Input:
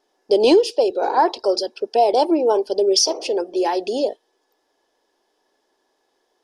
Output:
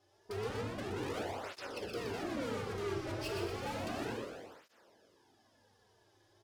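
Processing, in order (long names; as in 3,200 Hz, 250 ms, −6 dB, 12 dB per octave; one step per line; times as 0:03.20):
sub-octave generator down 2 octaves, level −1 dB
0:02.00–0:02.93: high-pass filter 130 Hz 6 dB per octave
treble cut that deepens with the level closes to 410 Hz, closed at −12 dBFS
0:00.90–0:01.50: spectral tilt −4 dB per octave
brickwall limiter −12 dBFS, peak gain reduction 11 dB
tube saturation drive 39 dB, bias 0.5
echo with shifted repeats 122 ms, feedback 49%, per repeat −69 Hz, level −5 dB
dense smooth reverb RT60 1.6 s, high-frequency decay 0.95×, DRR 2 dB
through-zero flanger with one copy inverted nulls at 0.32 Hz, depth 4.5 ms
level +1 dB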